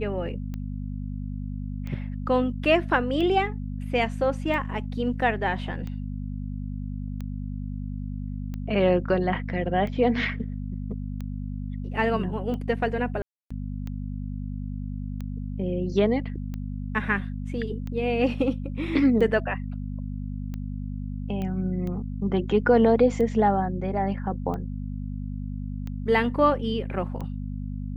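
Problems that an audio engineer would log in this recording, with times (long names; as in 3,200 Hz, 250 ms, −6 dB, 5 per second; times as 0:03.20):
mains hum 50 Hz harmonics 5 −32 dBFS
scratch tick 45 rpm −23 dBFS
0:13.22–0:13.51: drop-out 285 ms
0:21.42: click −21 dBFS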